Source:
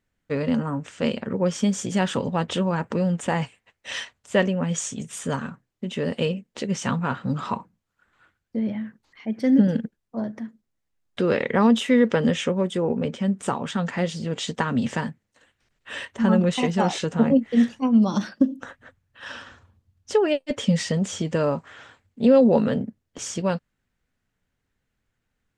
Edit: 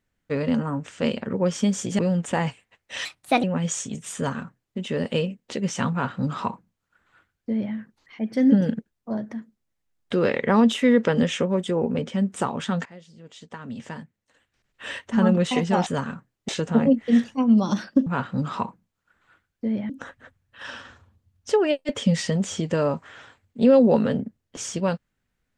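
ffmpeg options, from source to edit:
-filter_complex "[0:a]asplit=9[a][b][c][d][e][f][g][h][i];[a]atrim=end=1.992[j];[b]atrim=start=2.938:end=4.004[k];[c]atrim=start=4:end=4.5,asetpts=PTS-STARTPTS,asetrate=57330,aresample=44100[l];[d]atrim=start=4.496:end=13.92,asetpts=PTS-STARTPTS,afade=t=out:st=9.42:d=0.004:c=hsin:silence=0.0944061[m];[e]atrim=start=13.92:end=16.932,asetpts=PTS-STARTPTS,afade=t=in:d=2.06:c=qua:silence=0.0944061[n];[f]atrim=start=5.218:end=5.842[o];[g]atrim=start=16.928:end=18.512[p];[h]atrim=start=6.978:end=8.812[q];[i]atrim=start=18.508[r];[j][k]acrossfade=d=0.004:c1=hsin:c2=hsin[s];[s][l]acrossfade=d=0.004:c1=hsin:c2=hsin[t];[m][n]concat=n=2:v=0:a=1[u];[t][u]acrossfade=d=0.004:c1=hsin:c2=hsin[v];[v][o]acrossfade=d=0.004:c1=hsin:c2=hsin[w];[w][p]acrossfade=d=0.004:c1=hsin:c2=hsin[x];[x][q]acrossfade=d=0.004:c1=hsin:c2=hsin[y];[y][r]acrossfade=d=0.004:c1=hsin:c2=hsin"

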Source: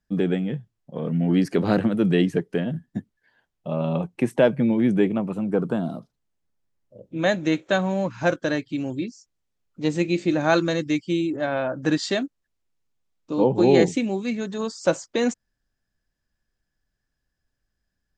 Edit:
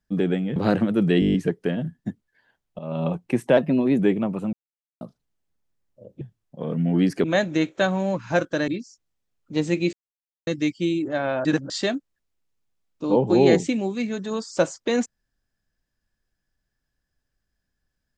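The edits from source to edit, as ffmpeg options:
-filter_complex "[0:a]asplit=21[a][b][c][d][e][f][g][h][i][j][k][l][m][n][o][p][q][r][s][t][u];[a]atrim=end=0.562[v];[b]atrim=start=1.588:end=2.252[w];[c]atrim=start=2.228:end=2.252[x];[d]atrim=start=2.228:end=2.252[y];[e]atrim=start=2.228:end=2.252[z];[f]atrim=start=2.228:end=2.252[aa];[g]atrim=start=2.228:end=2.252[ab];[h]atrim=start=2.228:end=2.252[ac];[i]atrim=start=2.228:end=3.68,asetpts=PTS-STARTPTS,afade=t=out:st=1.448:d=0.004:c=hsin:silence=0.237137[ad];[j]atrim=start=3.68:end=4.464,asetpts=PTS-STARTPTS,afade=t=in:d=0.26:silence=0.237137[ae];[k]atrim=start=4.46:end=4.93,asetpts=PTS-STARTPTS,asetrate=49392,aresample=44100,atrim=end_sample=18506,asetpts=PTS-STARTPTS[af];[l]atrim=start=4.926:end=5.47,asetpts=PTS-STARTPTS,afade=t=out:st=0.54:d=0.004:c=hsin[ag];[m]atrim=start=5.47:end=5.95,asetpts=PTS-STARTPTS,volume=0[ah];[n]atrim=start=5.95:end=7.152,asetpts=PTS-STARTPTS,afade=t=in:d=0.004:c=hsin[ai];[o]atrim=start=0.558:end=1.592[aj];[p]atrim=start=7.148:end=8.592[ak];[q]atrim=start=8.958:end=10.21,asetpts=PTS-STARTPTS,afade=t=out:st=1.248:d=0.004:c=hsin[al];[r]atrim=start=10.21:end=10.75,asetpts=PTS-STARTPTS,volume=0[am];[s]atrim=start=10.75:end=11.732,asetpts=PTS-STARTPTS,afade=t=in:d=0.004:c=hsin[an];[t]atrim=start=11.728:end=11.982,asetpts=PTS-STARTPTS,areverse[ao];[u]atrim=start=11.978[ap];[v][w]acrossfade=d=0.004:c1=hsin:c2=hsin[aq];[aq][x]acrossfade=d=0.004:c1=hsin:c2=hsin[ar];[ar][y]acrossfade=d=0.004:c1=hsin:c2=hsin[as];[as][z]acrossfade=d=0.004:c1=hsin:c2=hsin[at];[at][aa]acrossfade=d=0.004:c1=hsin:c2=hsin[au];[au][ab]acrossfade=d=0.004:c1=hsin:c2=hsin[av];[av][ac]acrossfade=d=0.004:c1=hsin:c2=hsin[aw];[ad][ae]concat=n=2:v=0:a=1[ax];[aw][ax]acrossfade=d=0.004:c1=hsin:c2=hsin[ay];[ay][af]acrossfade=d=0.004:c1=hsin:c2=hsin[az];[ag][ah][ai]concat=n=3:v=0:a=1[ba];[az][ba]acrossfade=d=0.004:c1=hsin:c2=hsin[bb];[bb][aj]acrossfade=d=0.004:c1=hsin:c2=hsin[bc];[bc][ak]acrossfade=d=0.004:c1=hsin:c2=hsin[bd];[al][am][an]concat=n=3:v=0:a=1[be];[bd][be]acrossfade=d=0.004:c1=hsin:c2=hsin[bf];[bf][ao]acrossfade=d=0.004:c1=hsin:c2=hsin[bg];[bg][ap]acrossfade=d=0.004:c1=hsin:c2=hsin"

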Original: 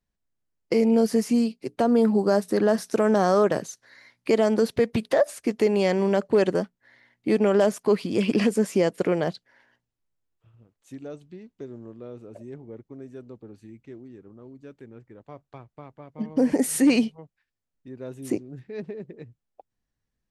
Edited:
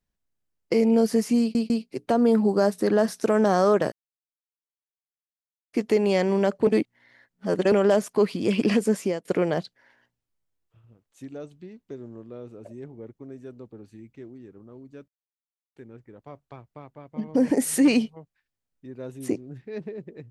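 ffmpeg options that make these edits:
-filter_complex "[0:a]asplit=9[a][b][c][d][e][f][g][h][i];[a]atrim=end=1.552[j];[b]atrim=start=1.398:end=1.552[k];[c]atrim=start=1.398:end=3.62,asetpts=PTS-STARTPTS,afade=t=out:st=2.218:d=0.004:c=hsin[l];[d]atrim=start=3.62:end=5.43,asetpts=PTS-STARTPTS,volume=0[m];[e]atrim=start=5.43:end=6.372,asetpts=PTS-STARTPTS,afade=t=in:d=0.004:c=hsin[n];[f]atrim=start=6.368:end=7.422,asetpts=PTS-STARTPTS,areverse[o];[g]atrim=start=7.418:end=8.95,asetpts=PTS-STARTPTS,afade=t=out:st=1.252:d=0.28:silence=0.0841395[p];[h]atrim=start=8.95:end=14.78,asetpts=PTS-STARTPTS,afade=t=in:d=0.004:c=hsin:silence=0.0841395,afade=t=out:st=5.826:d=0.004:c=hsin,apad=pad_dur=0.68[q];[i]atrim=start=14.78,asetpts=PTS-STARTPTS,afade=t=in:d=0.004:c=hsin[r];[j][k]acrossfade=d=0.004:c1=hsin:c2=hsin[s];[l][m][n]concat=n=3:v=0:a=1[t];[s][t]acrossfade=d=0.004:c1=hsin:c2=hsin[u];[u][o]acrossfade=d=0.004:c1=hsin:c2=hsin[v];[p][q][r]concat=n=3:v=0:a=1[w];[v][w]acrossfade=d=0.004:c1=hsin:c2=hsin"

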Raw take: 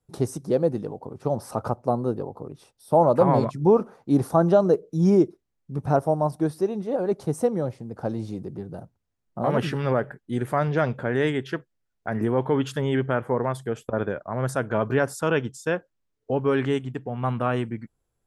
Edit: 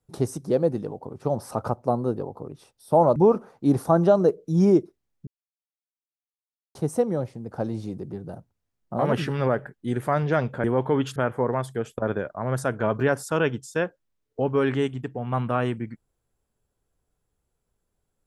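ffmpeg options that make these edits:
-filter_complex "[0:a]asplit=6[a][b][c][d][e][f];[a]atrim=end=3.162[g];[b]atrim=start=3.608:end=5.72,asetpts=PTS-STARTPTS,afade=t=out:st=2.108:d=0.004:c=hsin[h];[c]atrim=start=5.72:end=7.2,asetpts=PTS-STARTPTS,volume=0[i];[d]atrim=start=7.2:end=11.092,asetpts=PTS-STARTPTS,afade=t=in:d=0.004:c=hsin[j];[e]atrim=start=12.238:end=12.762[k];[f]atrim=start=13.068[l];[h][i][j]concat=n=3:v=0:a=1[m];[g][m]acrossfade=d=0.004:c1=hsin:c2=hsin[n];[n][k]acrossfade=d=0.004:c1=hsin:c2=hsin[o];[o][l]acrossfade=d=0.004:c1=hsin:c2=hsin"

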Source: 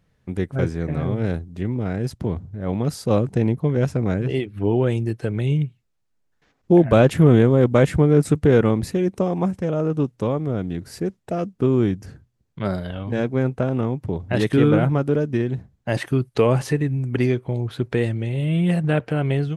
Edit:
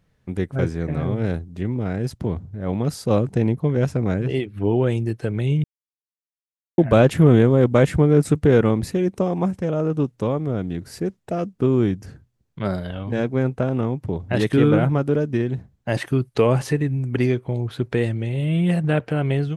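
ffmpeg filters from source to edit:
-filter_complex "[0:a]asplit=3[a][b][c];[a]atrim=end=5.64,asetpts=PTS-STARTPTS,afade=t=out:st=5.636:d=0.004:c=hsin[d];[b]atrim=start=5.64:end=6.78,asetpts=PTS-STARTPTS,volume=0[e];[c]atrim=start=6.78,asetpts=PTS-STARTPTS,afade=t=in:d=0.004:c=hsin[f];[d][e][f]concat=n=3:v=0:a=1"

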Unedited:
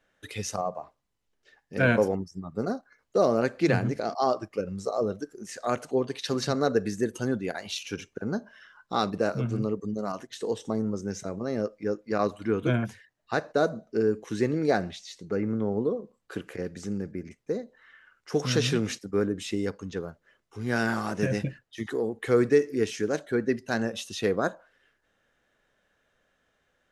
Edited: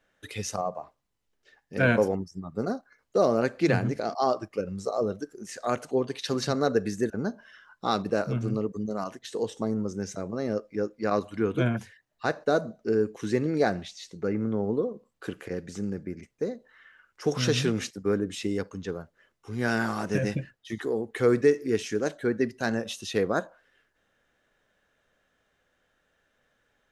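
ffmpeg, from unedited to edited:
-filter_complex "[0:a]asplit=2[a][b];[a]atrim=end=7.102[c];[b]atrim=start=8.178[d];[c][d]acrossfade=d=0.004:c1=hsin:c2=hsin"

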